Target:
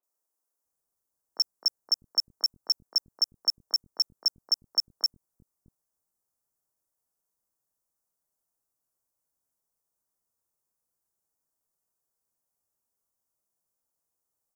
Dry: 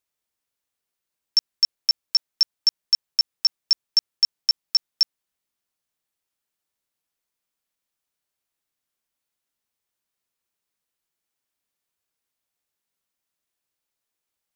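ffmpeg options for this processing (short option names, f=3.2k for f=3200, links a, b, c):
-filter_complex "[0:a]asplit=2[a][b];[b]aeval=exprs='0.0447*(abs(mod(val(0)/0.0447+3,4)-2)-1)':c=same,volume=-10.5dB[c];[a][c]amix=inputs=2:normalize=0,asuperstop=centerf=2900:order=4:qfactor=0.6,acrossover=split=260|1600[d][e][f];[f]adelay=30[g];[d]adelay=650[h];[h][e][g]amix=inputs=3:normalize=0,volume=-1dB"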